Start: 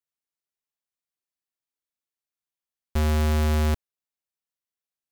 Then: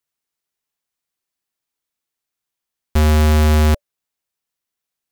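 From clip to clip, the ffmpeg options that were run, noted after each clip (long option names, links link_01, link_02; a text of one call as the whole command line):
ffmpeg -i in.wav -af "bandreject=frequency=580:width=19,volume=9dB" out.wav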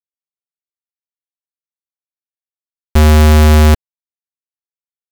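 ffmpeg -i in.wav -af "aeval=exprs='sgn(val(0))*max(abs(val(0))-0.0119,0)':channel_layout=same,volume=6.5dB" out.wav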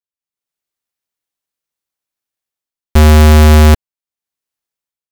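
ffmpeg -i in.wav -af "dynaudnorm=framelen=160:gausssize=5:maxgain=14dB,volume=-2.5dB" out.wav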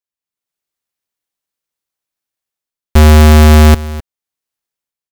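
ffmpeg -i in.wav -af "aecho=1:1:257:0.133,volume=1dB" out.wav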